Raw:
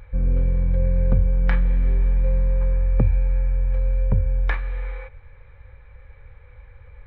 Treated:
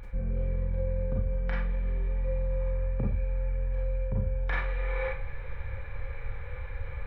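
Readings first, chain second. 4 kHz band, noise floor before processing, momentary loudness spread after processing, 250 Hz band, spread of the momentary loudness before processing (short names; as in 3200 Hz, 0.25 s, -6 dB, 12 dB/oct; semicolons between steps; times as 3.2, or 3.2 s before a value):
n/a, -47 dBFS, 9 LU, -8.5 dB, 6 LU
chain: reverse; compressor 6:1, threshold -33 dBFS, peak gain reduction 19.5 dB; reverse; Schroeder reverb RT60 0.35 s, combs from 32 ms, DRR -2.5 dB; gain +5.5 dB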